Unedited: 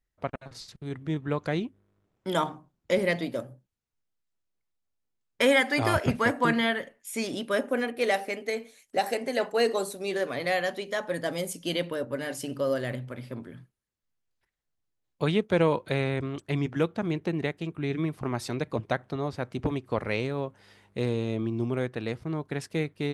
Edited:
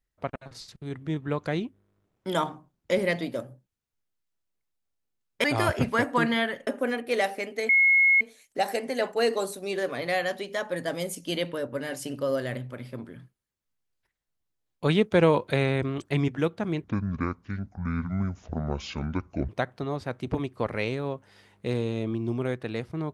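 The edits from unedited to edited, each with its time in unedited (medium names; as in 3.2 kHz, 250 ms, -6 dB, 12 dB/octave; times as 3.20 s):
5.44–5.71 s: delete
6.94–7.57 s: delete
8.59 s: add tone 2.17 kHz -16 dBFS 0.52 s
15.24–16.66 s: gain +3 dB
17.22–18.81 s: speed 60%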